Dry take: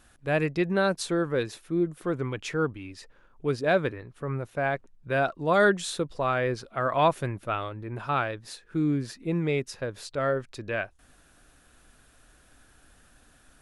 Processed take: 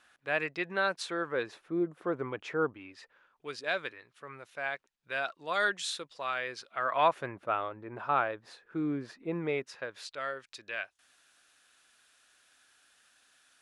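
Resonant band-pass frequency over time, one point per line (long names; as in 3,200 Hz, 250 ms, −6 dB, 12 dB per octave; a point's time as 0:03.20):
resonant band-pass, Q 0.65
0:01.09 2,000 Hz
0:01.67 840 Hz
0:02.65 840 Hz
0:03.54 3,600 Hz
0:06.56 3,600 Hz
0:07.39 910 Hz
0:09.45 910 Hz
0:10.26 3,900 Hz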